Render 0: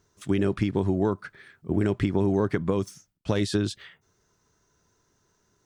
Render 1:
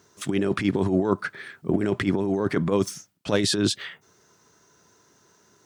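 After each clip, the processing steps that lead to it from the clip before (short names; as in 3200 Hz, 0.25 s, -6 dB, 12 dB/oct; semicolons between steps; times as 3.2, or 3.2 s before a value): negative-ratio compressor -26 dBFS, ratio -0.5; Bessel high-pass 180 Hz, order 2; gain +7 dB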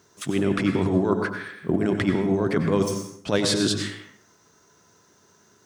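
plate-style reverb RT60 0.68 s, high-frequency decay 0.65×, pre-delay 80 ms, DRR 5 dB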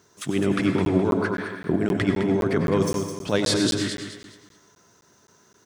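feedback echo 0.209 s, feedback 33%, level -8 dB; crackling interface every 0.26 s, samples 512, zero, from 0.85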